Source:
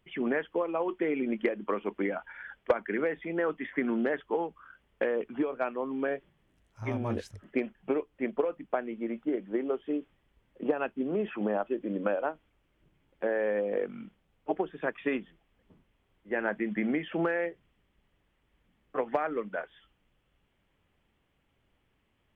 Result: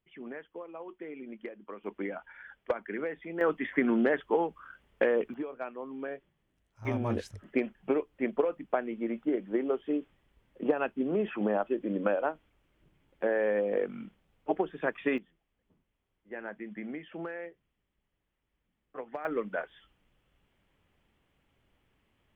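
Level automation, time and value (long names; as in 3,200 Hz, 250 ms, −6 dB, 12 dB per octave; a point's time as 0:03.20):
−13 dB
from 0:01.84 −5 dB
from 0:03.41 +3 dB
from 0:05.34 −7 dB
from 0:06.85 +1 dB
from 0:15.18 −10 dB
from 0:19.25 +1 dB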